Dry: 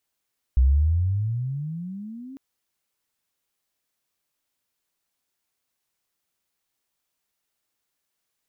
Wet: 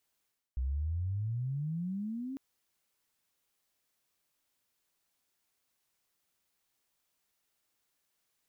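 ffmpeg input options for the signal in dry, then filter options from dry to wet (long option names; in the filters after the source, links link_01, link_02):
-f lavfi -i "aevalsrc='pow(10,(-13-24*t/1.8)/20)*sin(2*PI*61.4*1.8/(26*log(2)/12)*(exp(26*log(2)/12*t/1.8)-1))':duration=1.8:sample_rate=44100"
-af "areverse,acompressor=threshold=-34dB:ratio=6,areverse"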